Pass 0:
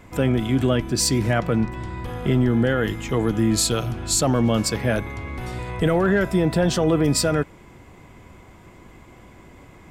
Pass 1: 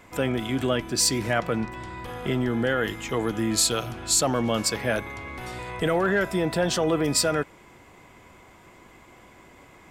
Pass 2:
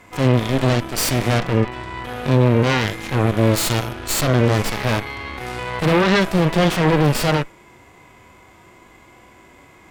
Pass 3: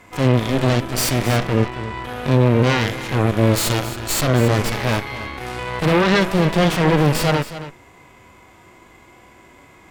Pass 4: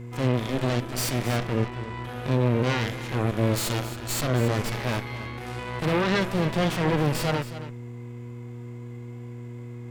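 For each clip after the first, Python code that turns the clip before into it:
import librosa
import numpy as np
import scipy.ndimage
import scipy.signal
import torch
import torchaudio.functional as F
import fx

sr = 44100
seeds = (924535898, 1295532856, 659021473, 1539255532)

y1 = fx.low_shelf(x, sr, hz=290.0, db=-11.0)
y2 = fx.cheby_harmonics(y1, sr, harmonics=(3, 5, 8), levels_db=(-13, -19, -10), full_scale_db=-10.0)
y2 = fx.hpss(y2, sr, part='percussive', gain_db=-15)
y2 = F.gain(torch.from_numpy(y2), 8.0).numpy()
y3 = y2 + 10.0 ** (-13.5 / 20.0) * np.pad(y2, (int(273 * sr / 1000.0), 0))[:len(y2)]
y4 = fx.dmg_buzz(y3, sr, base_hz=120.0, harmonics=4, level_db=-30.0, tilt_db=-7, odd_only=False)
y4 = F.gain(torch.from_numpy(y4), -8.0).numpy()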